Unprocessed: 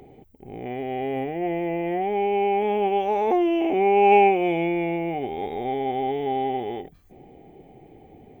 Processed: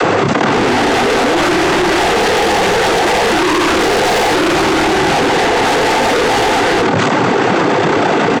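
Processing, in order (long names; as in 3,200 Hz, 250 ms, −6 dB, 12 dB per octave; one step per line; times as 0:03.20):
each half-wave held at its own peak
cochlear-implant simulation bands 16
mid-hump overdrive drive 34 dB, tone 1,500 Hz, clips at 0 dBFS
soft clipping −16 dBFS, distortion −10 dB
double-tracking delay 28 ms −12 dB
envelope flattener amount 100%
level +3.5 dB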